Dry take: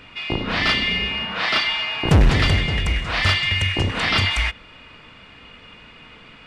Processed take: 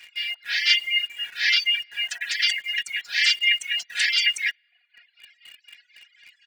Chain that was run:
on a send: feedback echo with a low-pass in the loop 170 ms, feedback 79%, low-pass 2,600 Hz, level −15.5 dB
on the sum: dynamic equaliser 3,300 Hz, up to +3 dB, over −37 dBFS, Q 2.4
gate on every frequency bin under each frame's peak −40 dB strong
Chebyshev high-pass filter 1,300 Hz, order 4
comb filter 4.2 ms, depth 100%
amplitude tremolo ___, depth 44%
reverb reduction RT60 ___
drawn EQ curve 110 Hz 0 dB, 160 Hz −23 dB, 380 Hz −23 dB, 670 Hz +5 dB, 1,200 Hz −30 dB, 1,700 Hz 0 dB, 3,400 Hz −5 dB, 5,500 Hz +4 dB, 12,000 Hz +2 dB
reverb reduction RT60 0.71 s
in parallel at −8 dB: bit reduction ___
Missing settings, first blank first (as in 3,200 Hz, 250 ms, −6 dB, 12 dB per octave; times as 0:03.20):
4 Hz, 1.3 s, 7 bits